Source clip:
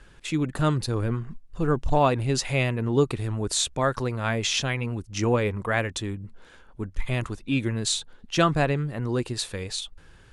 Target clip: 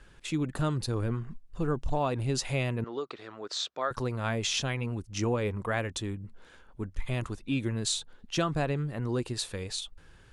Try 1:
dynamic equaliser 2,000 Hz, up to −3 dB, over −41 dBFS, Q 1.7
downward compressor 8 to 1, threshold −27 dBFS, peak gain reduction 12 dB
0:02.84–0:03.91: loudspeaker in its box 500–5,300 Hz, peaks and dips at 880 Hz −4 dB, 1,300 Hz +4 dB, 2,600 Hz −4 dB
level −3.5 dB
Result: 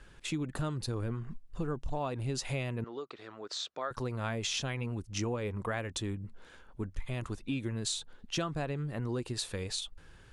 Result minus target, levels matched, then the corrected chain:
downward compressor: peak gain reduction +6 dB
dynamic equaliser 2,000 Hz, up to −3 dB, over −41 dBFS, Q 1.7
downward compressor 8 to 1, threshold −20 dBFS, peak gain reduction 6 dB
0:02.84–0:03.91: loudspeaker in its box 500–5,300 Hz, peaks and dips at 880 Hz −4 dB, 1,300 Hz +4 dB, 2,600 Hz −4 dB
level −3.5 dB

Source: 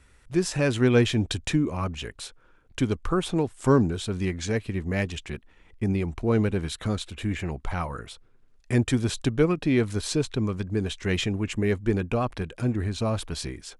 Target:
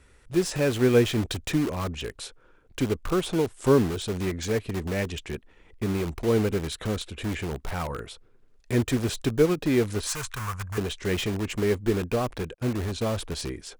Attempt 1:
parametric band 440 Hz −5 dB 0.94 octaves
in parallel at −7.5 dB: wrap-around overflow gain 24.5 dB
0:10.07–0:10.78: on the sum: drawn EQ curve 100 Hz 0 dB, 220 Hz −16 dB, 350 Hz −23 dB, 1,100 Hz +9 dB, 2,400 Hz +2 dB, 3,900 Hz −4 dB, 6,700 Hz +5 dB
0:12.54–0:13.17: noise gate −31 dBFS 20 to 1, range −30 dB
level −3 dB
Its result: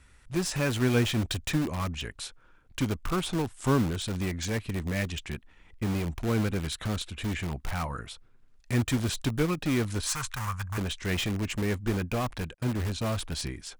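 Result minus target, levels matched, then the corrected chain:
500 Hz band −5.0 dB
parametric band 440 Hz +5.5 dB 0.94 octaves
in parallel at −7.5 dB: wrap-around overflow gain 24.5 dB
0:10.07–0:10.78: on the sum: drawn EQ curve 100 Hz 0 dB, 220 Hz −16 dB, 350 Hz −23 dB, 1,100 Hz +9 dB, 2,400 Hz +2 dB, 3,900 Hz −4 dB, 6,700 Hz +5 dB
0:12.54–0:13.17: noise gate −31 dBFS 20 to 1, range −30 dB
level −3 dB

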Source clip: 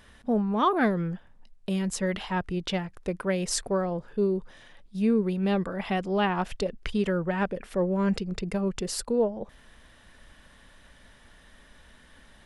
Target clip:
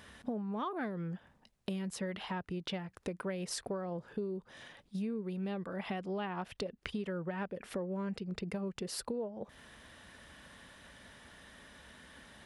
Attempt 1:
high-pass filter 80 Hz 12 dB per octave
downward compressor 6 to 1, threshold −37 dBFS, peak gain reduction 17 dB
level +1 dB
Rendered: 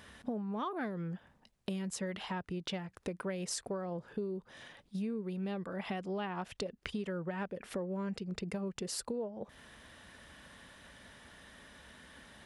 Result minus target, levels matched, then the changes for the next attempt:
8,000 Hz band +3.0 dB
add after high-pass filter: dynamic equaliser 7,200 Hz, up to −7 dB, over −55 dBFS, Q 1.5

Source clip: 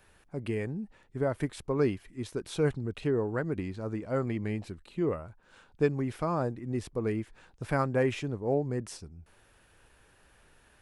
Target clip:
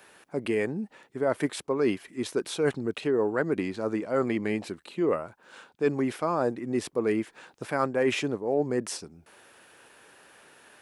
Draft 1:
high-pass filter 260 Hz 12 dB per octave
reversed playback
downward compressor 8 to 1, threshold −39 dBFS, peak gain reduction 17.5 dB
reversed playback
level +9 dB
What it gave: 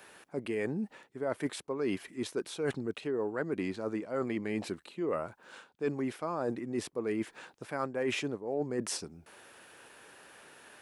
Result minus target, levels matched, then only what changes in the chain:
downward compressor: peak gain reduction +8 dB
change: downward compressor 8 to 1, threshold −30 dBFS, peak gain reduction 9.5 dB

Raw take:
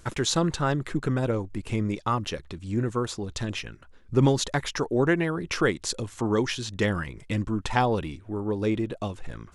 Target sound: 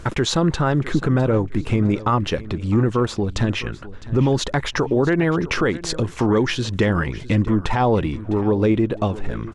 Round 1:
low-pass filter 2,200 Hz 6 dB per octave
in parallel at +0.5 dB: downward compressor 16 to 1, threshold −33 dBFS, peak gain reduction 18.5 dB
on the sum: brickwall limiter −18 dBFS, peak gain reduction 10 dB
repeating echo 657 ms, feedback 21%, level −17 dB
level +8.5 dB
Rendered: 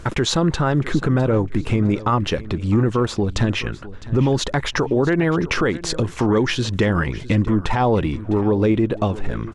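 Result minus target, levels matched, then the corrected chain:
downward compressor: peak gain reduction −5.5 dB
low-pass filter 2,200 Hz 6 dB per octave
in parallel at +0.5 dB: downward compressor 16 to 1, threshold −39 dBFS, peak gain reduction 24 dB
on the sum: brickwall limiter −18 dBFS, peak gain reduction 9.5 dB
repeating echo 657 ms, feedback 21%, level −17 dB
level +8.5 dB

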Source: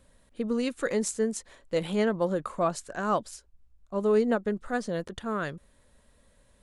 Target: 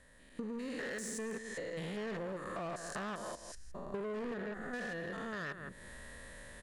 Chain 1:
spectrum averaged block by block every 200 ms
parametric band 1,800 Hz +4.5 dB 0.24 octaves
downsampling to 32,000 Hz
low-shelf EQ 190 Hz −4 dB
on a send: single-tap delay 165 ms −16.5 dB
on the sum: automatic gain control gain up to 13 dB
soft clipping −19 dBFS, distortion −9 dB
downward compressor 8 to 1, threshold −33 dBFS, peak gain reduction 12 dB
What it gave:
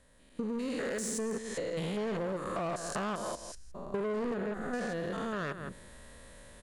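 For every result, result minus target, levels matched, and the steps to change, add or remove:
downward compressor: peak gain reduction −6 dB; 2,000 Hz band −5.5 dB
change: downward compressor 8 to 1, threshold −40 dBFS, peak gain reduction 18 dB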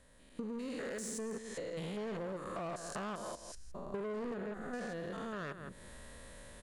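2,000 Hz band −5.0 dB
change: parametric band 1,800 Hz +15 dB 0.24 octaves

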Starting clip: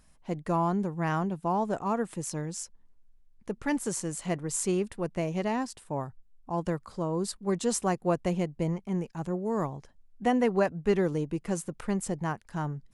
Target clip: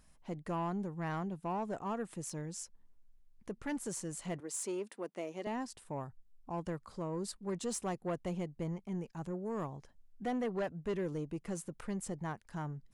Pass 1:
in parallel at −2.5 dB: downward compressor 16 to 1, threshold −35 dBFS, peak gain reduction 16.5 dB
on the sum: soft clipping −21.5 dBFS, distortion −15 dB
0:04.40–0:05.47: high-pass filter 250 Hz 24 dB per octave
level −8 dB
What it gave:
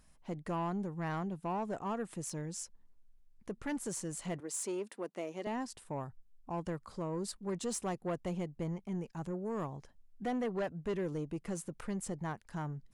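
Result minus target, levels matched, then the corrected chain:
downward compressor: peak gain reduction −7 dB
in parallel at −2.5 dB: downward compressor 16 to 1, threshold −42.5 dBFS, peak gain reduction 23.5 dB
on the sum: soft clipping −21.5 dBFS, distortion −15 dB
0:04.40–0:05.47: high-pass filter 250 Hz 24 dB per octave
level −8 dB

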